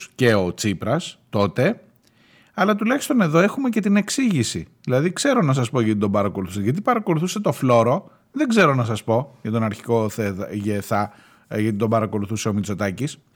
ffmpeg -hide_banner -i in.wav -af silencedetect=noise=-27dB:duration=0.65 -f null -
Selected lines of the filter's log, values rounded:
silence_start: 1.73
silence_end: 2.58 | silence_duration: 0.85